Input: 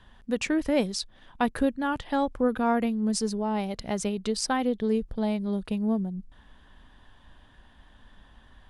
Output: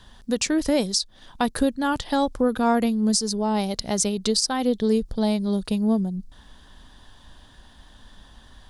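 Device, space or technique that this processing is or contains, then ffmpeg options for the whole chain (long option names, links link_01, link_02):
over-bright horn tweeter: -af "highshelf=frequency=3400:width_type=q:width=1.5:gain=8.5,alimiter=limit=-16dB:level=0:latency=1:release=257,volume=5dB"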